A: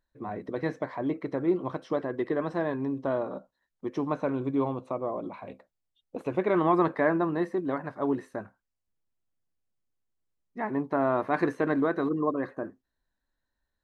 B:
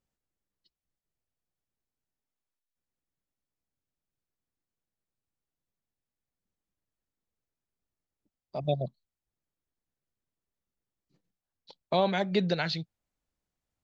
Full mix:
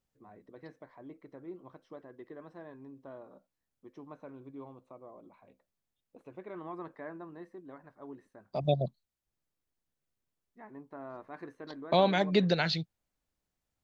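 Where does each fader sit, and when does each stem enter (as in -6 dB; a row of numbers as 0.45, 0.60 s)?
-19.0, +1.0 dB; 0.00, 0.00 s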